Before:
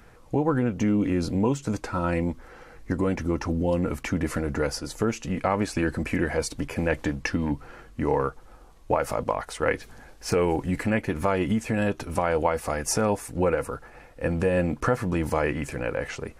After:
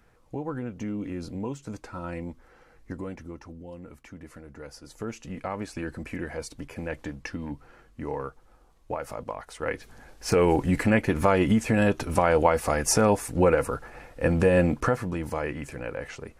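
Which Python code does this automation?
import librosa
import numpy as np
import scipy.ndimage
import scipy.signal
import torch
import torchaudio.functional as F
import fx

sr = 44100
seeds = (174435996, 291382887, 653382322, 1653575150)

y = fx.gain(x, sr, db=fx.line((2.93, -9.5), (3.59, -18.0), (4.54, -18.0), (5.11, -8.5), (9.42, -8.5), (10.5, 3.0), (14.66, 3.0), (15.18, -5.5)))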